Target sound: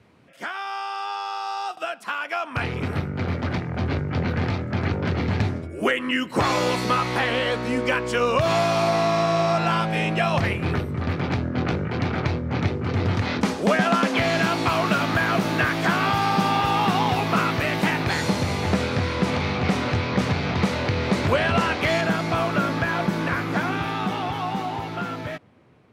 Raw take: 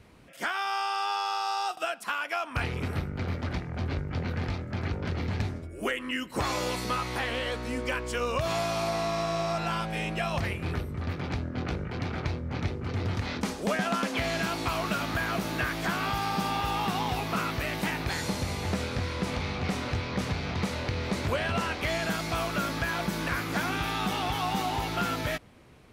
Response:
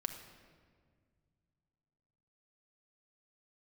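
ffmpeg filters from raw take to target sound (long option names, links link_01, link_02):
-af "highpass=frequency=88:width=0.5412,highpass=frequency=88:width=1.3066,dynaudnorm=framelen=410:gausssize=13:maxgain=9dB,asetnsamples=nb_out_samples=441:pad=0,asendcmd='22.01 lowpass f 1800',lowpass=frequency=3900:poles=1"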